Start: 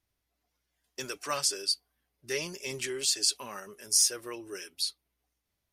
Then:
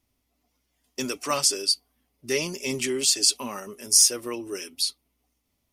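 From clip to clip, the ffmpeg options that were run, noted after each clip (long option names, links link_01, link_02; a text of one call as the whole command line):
ffmpeg -i in.wav -af "equalizer=frequency=250:width_type=o:width=0.33:gain=11,equalizer=frequency=1600:width_type=o:width=0.33:gain=-9,equalizer=frequency=4000:width_type=o:width=0.33:gain=-3,volume=7dB" out.wav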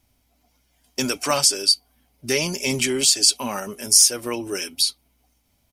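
ffmpeg -i in.wav -filter_complex "[0:a]aecho=1:1:1.3:0.34,asplit=2[link_01][link_02];[link_02]acompressor=threshold=-28dB:ratio=6,volume=2dB[link_03];[link_01][link_03]amix=inputs=2:normalize=0,asoftclip=type=hard:threshold=-2.5dB,volume=1dB" out.wav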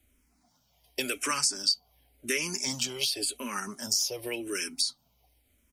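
ffmpeg -i in.wav -filter_complex "[0:a]acrossover=split=230|1100[link_01][link_02][link_03];[link_01]acompressor=threshold=-45dB:ratio=4[link_04];[link_02]acompressor=threshold=-34dB:ratio=4[link_05];[link_03]acompressor=threshold=-23dB:ratio=4[link_06];[link_04][link_05][link_06]amix=inputs=3:normalize=0,asplit=2[link_07][link_08];[link_08]afreqshift=-0.91[link_09];[link_07][link_09]amix=inputs=2:normalize=1" out.wav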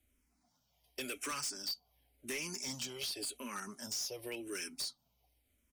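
ffmpeg -i in.wav -af "volume=27dB,asoftclip=hard,volume=-27dB,volume=-8dB" out.wav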